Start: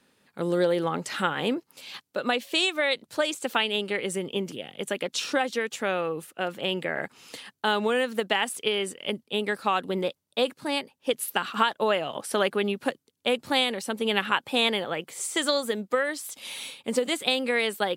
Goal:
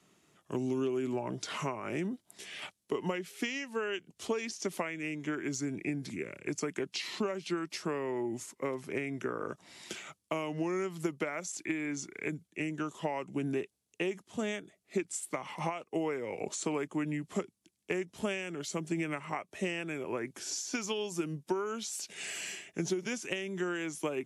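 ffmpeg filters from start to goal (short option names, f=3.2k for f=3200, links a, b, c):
-filter_complex "[0:a]aemphasis=mode=production:type=cd,acompressor=threshold=-29dB:ratio=6,asetrate=32667,aresample=44100,acrossover=split=180|640|3000[a][b][c][d];[b]acontrast=70[e];[d]highshelf=f=11k:g=-4[f];[a][e][c][f]amix=inputs=4:normalize=0,volume=-5.5dB"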